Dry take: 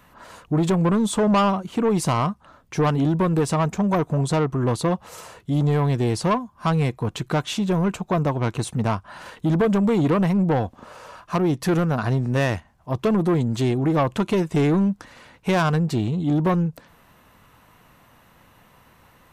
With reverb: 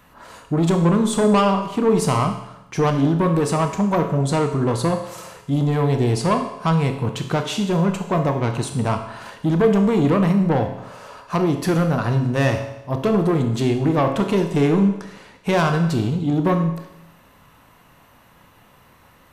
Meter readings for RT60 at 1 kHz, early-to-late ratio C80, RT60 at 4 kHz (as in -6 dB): 0.90 s, 10.0 dB, 0.90 s